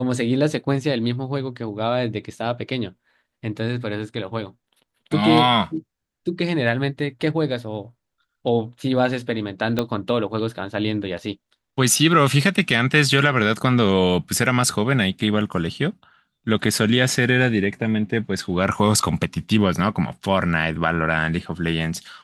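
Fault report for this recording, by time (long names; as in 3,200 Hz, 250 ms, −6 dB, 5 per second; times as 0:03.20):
0:09.79: click −8 dBFS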